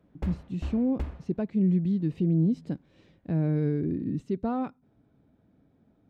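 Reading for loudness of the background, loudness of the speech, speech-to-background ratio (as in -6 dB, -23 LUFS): -39.0 LUFS, -28.5 LUFS, 10.5 dB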